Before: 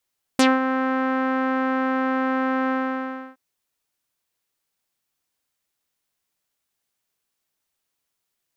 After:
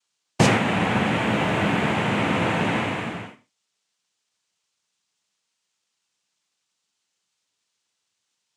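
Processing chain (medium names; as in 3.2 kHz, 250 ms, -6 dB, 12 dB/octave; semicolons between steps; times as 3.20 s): noise-vocoded speech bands 4; 1.21–1.92 s: added noise pink -59 dBFS; gated-style reverb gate 160 ms falling, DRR 9.5 dB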